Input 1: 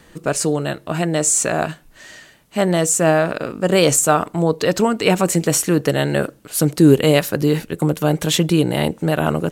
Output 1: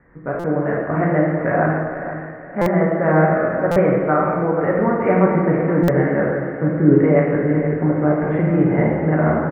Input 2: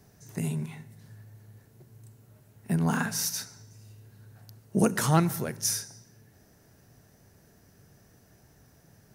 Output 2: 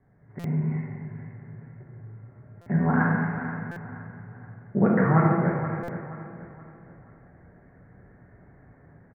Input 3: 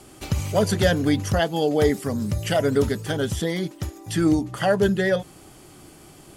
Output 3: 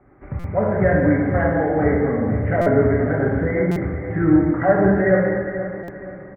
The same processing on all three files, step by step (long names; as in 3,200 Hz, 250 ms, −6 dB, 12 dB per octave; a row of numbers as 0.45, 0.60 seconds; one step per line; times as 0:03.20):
Chebyshev low-pass filter 2,100 Hz, order 6
automatic gain control gain up to 8.5 dB
repeating echo 476 ms, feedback 37%, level −11 dB
reverb whose tail is shaped and stops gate 470 ms falling, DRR −4 dB
buffer that repeats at 0:00.39/0:02.61/0:03.71/0:05.83, samples 256, times 8
level −7 dB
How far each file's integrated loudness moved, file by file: 0.0, +2.5, +4.0 LU